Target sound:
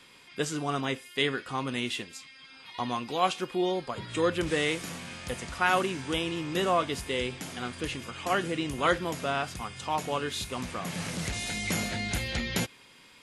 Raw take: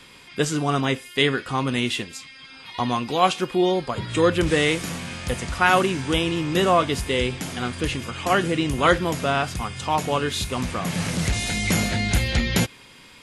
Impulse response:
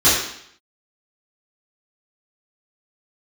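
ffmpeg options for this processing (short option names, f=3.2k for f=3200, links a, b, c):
-af "lowshelf=f=140:g=-7.5,volume=-7dB"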